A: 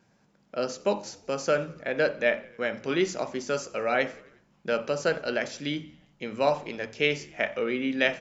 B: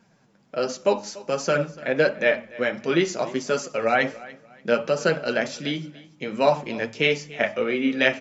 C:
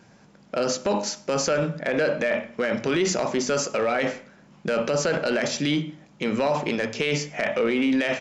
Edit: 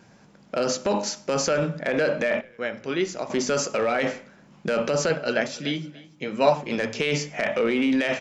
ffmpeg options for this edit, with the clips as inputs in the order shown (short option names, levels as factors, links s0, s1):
-filter_complex "[2:a]asplit=3[s0][s1][s2];[s0]atrim=end=2.412[s3];[0:a]atrim=start=2.408:end=3.302[s4];[s1]atrim=start=3.298:end=5.102[s5];[1:a]atrim=start=5.098:end=6.712[s6];[s2]atrim=start=6.708[s7];[s3][s4]acrossfade=d=0.004:c1=hsin:c2=hsin[s8];[s8][s5]acrossfade=d=0.004:c1=hsin:c2=hsin[s9];[s9][s6]acrossfade=d=0.004:c1=hsin:c2=hsin[s10];[s10][s7]acrossfade=d=0.004:c1=hsin:c2=hsin"